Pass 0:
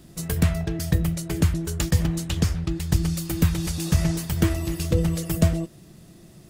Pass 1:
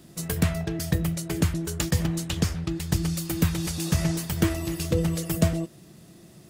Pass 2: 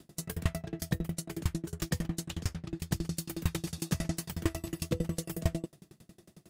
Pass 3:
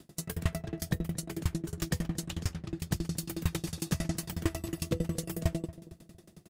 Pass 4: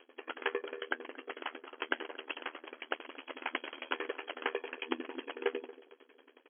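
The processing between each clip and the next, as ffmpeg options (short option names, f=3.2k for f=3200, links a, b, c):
-af "highpass=f=120:p=1"
-af "aeval=exprs='val(0)*pow(10,-30*if(lt(mod(11*n/s,1),2*abs(11)/1000),1-mod(11*n/s,1)/(2*abs(11)/1000),(mod(11*n/s,1)-2*abs(11)/1000)/(1-2*abs(11)/1000))/20)':c=same"
-filter_complex "[0:a]asplit=2[a][b];[b]asoftclip=type=tanh:threshold=-24dB,volume=-9dB[c];[a][c]amix=inputs=2:normalize=0,asplit=2[d][e];[e]adelay=230,lowpass=f=860:p=1,volume=-15.5dB,asplit=2[f][g];[g]adelay=230,lowpass=f=860:p=1,volume=0.46,asplit=2[h][i];[i]adelay=230,lowpass=f=860:p=1,volume=0.46,asplit=2[j][k];[k]adelay=230,lowpass=f=860:p=1,volume=0.46[l];[d][f][h][j][l]amix=inputs=5:normalize=0,volume=-1.5dB"
-af "afreqshift=-220,afftfilt=real='re*between(b*sr/4096,280,3300)':imag='im*between(b*sr/4096,280,3300)':win_size=4096:overlap=0.75,aeval=exprs='val(0)*sin(2*PI*39*n/s)':c=same,volume=9.5dB"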